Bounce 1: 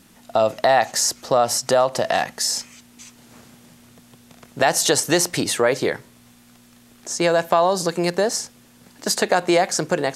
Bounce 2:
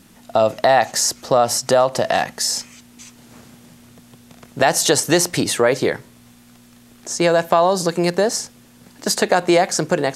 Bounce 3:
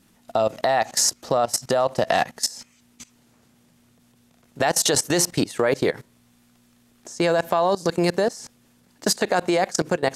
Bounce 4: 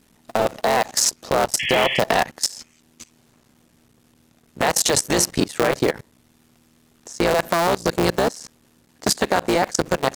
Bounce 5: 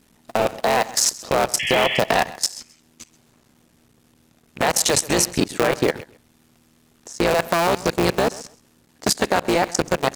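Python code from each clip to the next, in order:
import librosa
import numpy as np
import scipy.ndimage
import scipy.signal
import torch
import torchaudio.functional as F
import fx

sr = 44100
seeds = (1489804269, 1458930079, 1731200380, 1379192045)

y1 = fx.low_shelf(x, sr, hz=370.0, db=3.0)
y1 = y1 * 10.0 ** (1.5 / 20.0)
y2 = fx.level_steps(y1, sr, step_db=20)
y2 = y2 * 10.0 ** (1.0 / 20.0)
y3 = fx.cycle_switch(y2, sr, every=3, mode='muted')
y3 = fx.spec_paint(y3, sr, seeds[0], shape='noise', start_s=1.59, length_s=0.41, low_hz=1700.0, high_hz=3400.0, level_db=-27.0)
y3 = y3 * 10.0 ** (3.0 / 20.0)
y4 = fx.rattle_buzz(y3, sr, strikes_db=-33.0, level_db=-22.0)
y4 = fx.echo_feedback(y4, sr, ms=131, feedback_pct=18, wet_db=-19.0)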